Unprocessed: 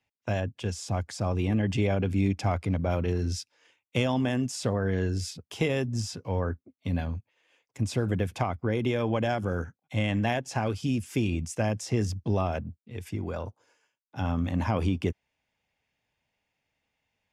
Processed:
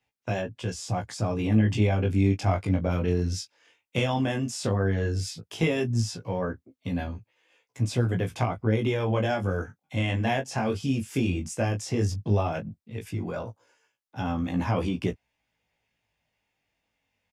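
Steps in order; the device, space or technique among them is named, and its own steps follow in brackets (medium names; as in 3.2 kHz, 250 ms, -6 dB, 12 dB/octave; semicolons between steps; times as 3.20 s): double-tracked vocal (doubling 18 ms -10 dB; chorus 0.14 Hz, delay 15.5 ms, depth 6.9 ms); trim +4 dB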